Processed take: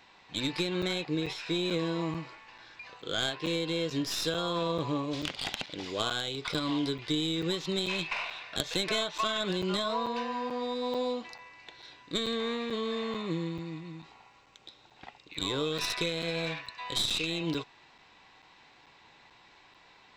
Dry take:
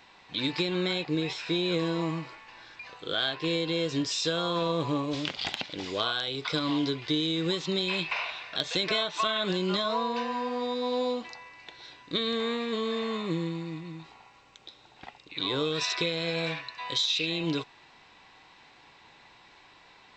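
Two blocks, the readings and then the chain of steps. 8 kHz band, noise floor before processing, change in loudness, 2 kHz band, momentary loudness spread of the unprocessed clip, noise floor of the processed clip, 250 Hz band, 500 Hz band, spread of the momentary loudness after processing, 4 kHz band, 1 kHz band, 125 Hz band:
+0.5 dB, -56 dBFS, -2.5 dB, -2.5 dB, 14 LU, -59 dBFS, -2.5 dB, -2.5 dB, 14 LU, -3.0 dB, -2.5 dB, -2.0 dB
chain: tracing distortion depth 0.067 ms; crackling interface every 0.44 s, samples 256, zero, from 0.82; gain -2.5 dB

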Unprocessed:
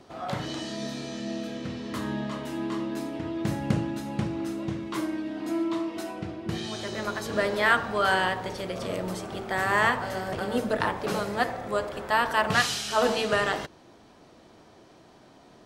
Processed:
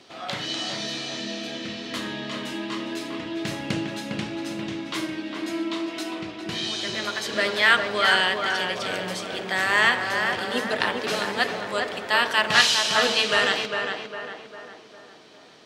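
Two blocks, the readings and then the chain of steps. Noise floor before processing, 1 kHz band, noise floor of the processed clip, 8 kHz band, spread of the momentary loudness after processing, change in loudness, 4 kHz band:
-54 dBFS, +1.0 dB, -48 dBFS, +6.0 dB, 13 LU, +4.0 dB, +10.5 dB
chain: weighting filter D; on a send: tape echo 0.403 s, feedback 54%, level -3.5 dB, low-pass 2000 Hz; on the sum: gain -1 dB

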